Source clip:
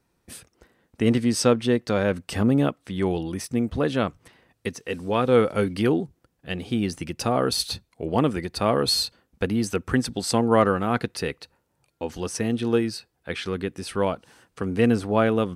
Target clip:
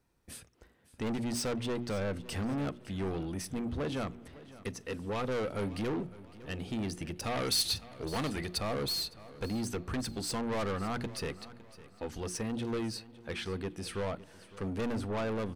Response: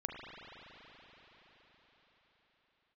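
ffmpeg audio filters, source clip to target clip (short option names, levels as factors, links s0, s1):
-filter_complex "[0:a]asoftclip=type=hard:threshold=0.15,lowshelf=f=80:g=8,bandreject=f=60:t=h:w=6,bandreject=f=120:t=h:w=6,bandreject=f=180:t=h:w=6,bandreject=f=240:t=h:w=6,bandreject=f=300:t=h:w=6,bandreject=f=360:t=h:w=6,asoftclip=type=tanh:threshold=0.0562,aecho=1:1:558|1116|1674:0.126|0.0478|0.0182,asplit=2[s0][s1];[1:a]atrim=start_sample=2205,adelay=42[s2];[s1][s2]afir=irnorm=-1:irlink=0,volume=0.0668[s3];[s0][s3]amix=inputs=2:normalize=0,asettb=1/sr,asplit=3[s4][s5][s6];[s4]atrim=end=7.214[s7];[s5]atrim=start=7.21:end=8.58,asetpts=PTS-STARTPTS,afade=t=in:d=0.004:c=qsin,afade=t=out:st=1.366:d=0.004:c=qsin,adynamicequalizer=threshold=0.00562:dfrequency=1500:dqfactor=0.7:tfrequency=1500:tqfactor=0.7:attack=5:release=100:ratio=0.375:range=3.5:mode=boostabove:tftype=highshelf[s8];[s6]atrim=start=8.576[s9];[s7][s8]acrossfade=d=0.004:c1=hsin:c2=qsin[s10];[s10][s9]acrossfade=d=0.004:c1=qsin:c2=hsin,volume=0.531"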